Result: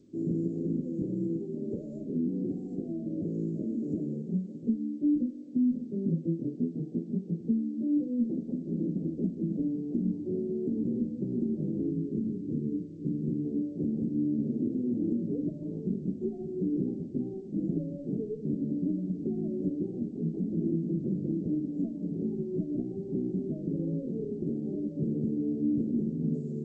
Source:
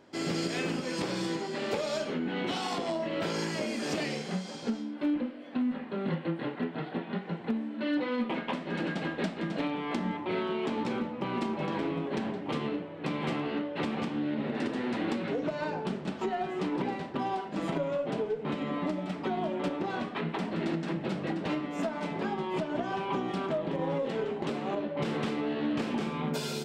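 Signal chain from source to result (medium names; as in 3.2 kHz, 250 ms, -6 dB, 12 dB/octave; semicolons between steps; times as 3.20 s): 11.90–13.45 s: peaking EQ 680 Hz -12.5 dB 0.6 oct; inverse Chebyshev band-stop 1–5.1 kHz, stop band 60 dB; trim +4 dB; G.722 64 kbps 16 kHz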